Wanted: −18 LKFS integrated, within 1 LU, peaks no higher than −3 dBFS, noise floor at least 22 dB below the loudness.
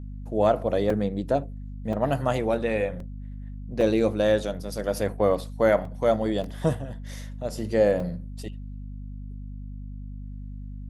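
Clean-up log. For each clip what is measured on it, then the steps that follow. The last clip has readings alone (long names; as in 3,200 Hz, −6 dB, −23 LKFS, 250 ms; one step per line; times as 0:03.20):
number of dropouts 7; longest dropout 2.9 ms; mains hum 50 Hz; hum harmonics up to 250 Hz; level of the hum −34 dBFS; integrated loudness −25.5 LKFS; sample peak −8.5 dBFS; target loudness −18.0 LKFS
→ repair the gap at 0:00.90/0:01.93/0:03.00/0:03.81/0:05.85/0:06.44/0:08.00, 2.9 ms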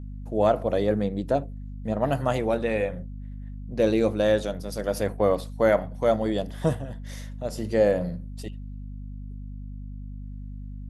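number of dropouts 0; mains hum 50 Hz; hum harmonics up to 250 Hz; level of the hum −34 dBFS
→ hum removal 50 Hz, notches 5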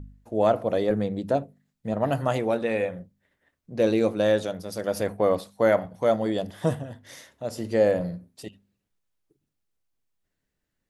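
mains hum none found; integrated loudness −25.5 LKFS; sample peak −9.0 dBFS; target loudness −18.0 LKFS
→ level +7.5 dB
brickwall limiter −3 dBFS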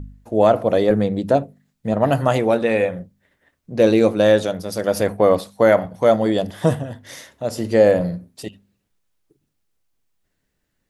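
integrated loudness −18.5 LKFS; sample peak −3.0 dBFS; background noise floor −73 dBFS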